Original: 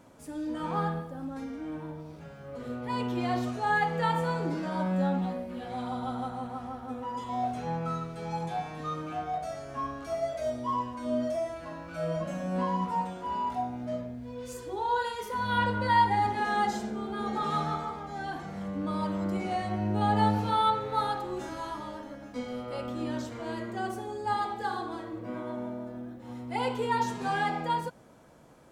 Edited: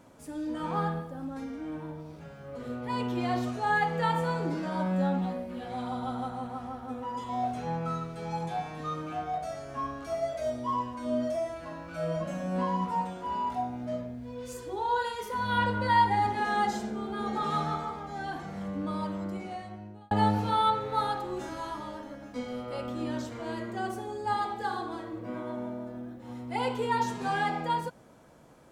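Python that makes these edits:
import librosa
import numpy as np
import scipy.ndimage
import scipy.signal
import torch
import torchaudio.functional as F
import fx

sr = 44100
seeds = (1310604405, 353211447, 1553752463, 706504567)

y = fx.edit(x, sr, fx.fade_out_span(start_s=18.72, length_s=1.39), tone=tone)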